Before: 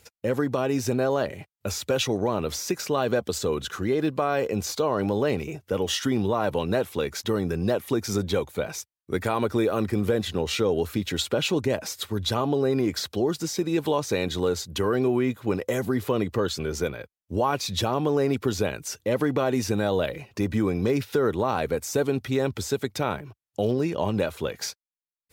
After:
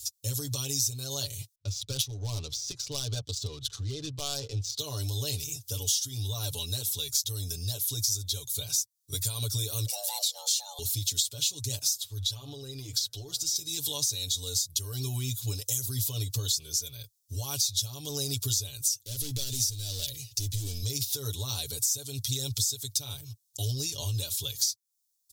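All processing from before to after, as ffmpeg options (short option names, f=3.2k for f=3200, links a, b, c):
-filter_complex "[0:a]asettb=1/sr,asplit=3[a][b][c];[a]atrim=end=1.554[d];[b]atrim=start=1.55:end=4.79,asetpts=PTS-STARTPTS,afade=t=in:d=0.004:c=qsin,afade=t=out:st=3.236:d=0.004:c=qsin,adynamicsmooth=sensitivity=2:basefreq=1.3k,asoftclip=type=hard:threshold=-16dB[e];[c]atrim=start=4.786[f];[d][e]acrossfade=d=0.004:c1=hsin:c2=qsin[g];[g][f]acrossfade=d=0.004:c1=qsin:c2=hsin,asettb=1/sr,asplit=3[h][i][j];[h]atrim=end=9.864[k];[i]atrim=start=9.86:end=10.79,asetpts=PTS-STARTPTS,afade=t=in:d=0.004:c=qsin,afade=t=out:st=0.926:d=0.004:c=qsin,lowshelf=f=120:g=5.5,afreqshift=400[l];[j]atrim=start=10.786[m];[k][l]acrossfade=d=0.004:c1=hsin:c2=qsin[n];[n][m]acrossfade=d=0.004:c1=qsin:c2=hsin,asettb=1/sr,asplit=3[o][p][q];[o]atrim=end=11.974[r];[p]atrim=start=11.97:end=13.56,asetpts=PTS-STARTPTS,afade=t=in:d=0.004:c=qsin,afade=t=out:st=1.586:d=0.004:c=qsin,bass=f=250:g=-5,treble=f=4k:g=-11,bandreject=f=118.2:t=h:w=4,bandreject=f=236.4:t=h:w=4,bandreject=f=354.6:t=h:w=4,bandreject=f=472.8:t=h:w=4,bandreject=f=591:t=h:w=4,bandreject=f=709.2:t=h:w=4,bandreject=f=827.4:t=h:w=4,bandreject=f=945.6:t=h:w=4,bandreject=f=1.0638k:t=h:w=4,bandreject=f=1.182k:t=h:w=4,bandreject=f=1.3002k:t=h:w=4,bandreject=f=1.4184k:t=h:w=4,bandreject=f=1.5366k:t=h:w=4,bandreject=f=1.6548k:t=h:w=4,bandreject=f=1.773k:t=h:w=4,bandreject=f=1.8912k:t=h:w=4,acompressor=threshold=-27dB:ratio=3:attack=3.2:release=140:knee=1:detection=peak[s];[q]atrim=start=13.556[t];[r][s]acrossfade=d=0.004:c1=hsin:c2=qsin[u];[u][t]acrossfade=d=0.004:c1=qsin:c2=hsin,asettb=1/sr,asplit=3[v][w][x];[v]atrim=end=19.034[y];[w]atrim=start=19.03:end=20.83,asetpts=PTS-STARTPTS,afade=t=in:d=0.004:c=qsin,afade=t=out:st=1.796:d=0.004:c=qsin,asoftclip=type=hard:threshold=-23dB,equalizer=f=1k:t=o:w=0.86:g=-11.5[z];[x]atrim=start=20.826[aa];[y][z]acrossfade=d=0.004:c1=hsin:c2=qsin[ab];[ab][aa]acrossfade=d=0.004:c1=qsin:c2=hsin,firequalizer=gain_entry='entry(110,0);entry(160,-25);entry(1900,-26);entry(3500,4);entry(5700,13)':delay=0.05:min_phase=1,acompressor=threshold=-35dB:ratio=4,aecho=1:1:7:0.85,volume=5dB"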